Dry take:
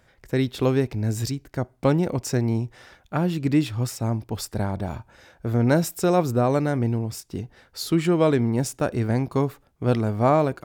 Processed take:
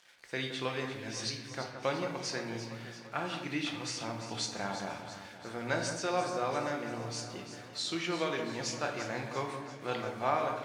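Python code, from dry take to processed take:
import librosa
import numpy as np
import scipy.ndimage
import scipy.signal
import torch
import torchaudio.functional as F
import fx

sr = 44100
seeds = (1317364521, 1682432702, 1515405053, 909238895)

p1 = fx.freq_compress(x, sr, knee_hz=3500.0, ratio=1.5)
p2 = fx.rider(p1, sr, range_db=5, speed_s=0.5)
p3 = p1 + F.gain(torch.from_numpy(p2), 0.5).numpy()
p4 = fx.quant_dither(p3, sr, seeds[0], bits=8, dither='none')
p5 = fx.bandpass_q(p4, sr, hz=3100.0, q=0.6)
p6 = fx.echo_alternate(p5, sr, ms=171, hz=1900.0, feedback_pct=75, wet_db=-8.5)
p7 = fx.room_shoebox(p6, sr, seeds[1], volume_m3=330.0, walls='mixed', distance_m=0.82)
y = F.gain(torch.from_numpy(p7), -8.5).numpy()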